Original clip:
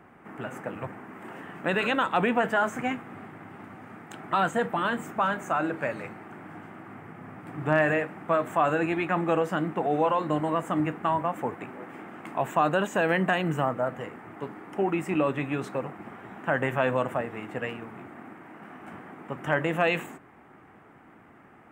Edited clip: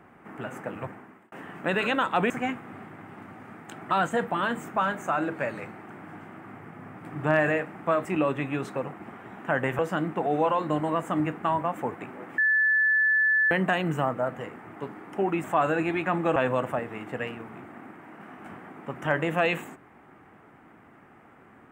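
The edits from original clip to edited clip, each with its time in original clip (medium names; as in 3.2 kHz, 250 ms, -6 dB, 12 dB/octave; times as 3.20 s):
0.85–1.32 s: fade out
2.30–2.72 s: delete
8.47–9.39 s: swap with 15.04–16.78 s
11.98–13.11 s: bleep 1.74 kHz -19 dBFS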